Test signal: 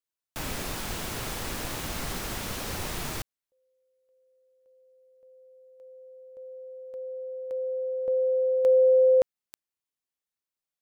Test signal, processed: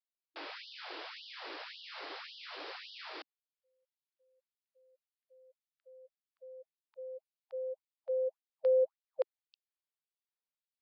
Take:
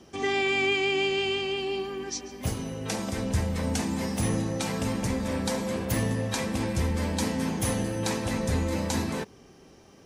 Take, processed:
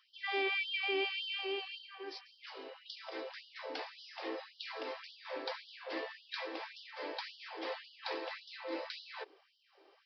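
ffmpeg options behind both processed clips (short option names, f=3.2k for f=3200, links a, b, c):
-af "aresample=11025,aresample=44100,afftfilt=real='re*gte(b*sr/1024,260*pow(2900/260,0.5+0.5*sin(2*PI*1.8*pts/sr)))':imag='im*gte(b*sr/1024,260*pow(2900/260,0.5+0.5*sin(2*PI*1.8*pts/sr)))':win_size=1024:overlap=0.75,volume=-7dB"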